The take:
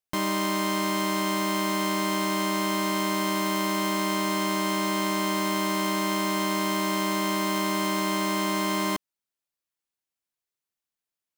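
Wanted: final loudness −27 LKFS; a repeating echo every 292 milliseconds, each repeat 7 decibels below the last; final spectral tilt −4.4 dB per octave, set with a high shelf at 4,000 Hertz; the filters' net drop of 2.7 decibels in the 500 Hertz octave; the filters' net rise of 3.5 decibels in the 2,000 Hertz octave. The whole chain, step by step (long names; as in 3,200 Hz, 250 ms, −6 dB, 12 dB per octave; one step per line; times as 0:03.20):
parametric band 500 Hz −4 dB
parametric band 2,000 Hz +5.5 dB
high-shelf EQ 4,000 Hz −7 dB
repeating echo 292 ms, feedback 45%, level −7 dB
level −1 dB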